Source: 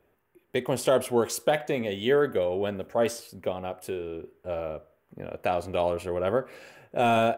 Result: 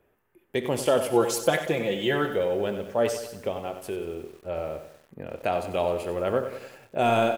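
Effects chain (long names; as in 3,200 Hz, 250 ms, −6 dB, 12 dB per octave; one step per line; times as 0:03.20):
0:01.13–0:02.32: comb filter 5.9 ms, depth 85%
ambience of single reflections 24 ms −17 dB, 62 ms −15.5 dB
feedback echo at a low word length 94 ms, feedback 55%, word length 8 bits, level −10 dB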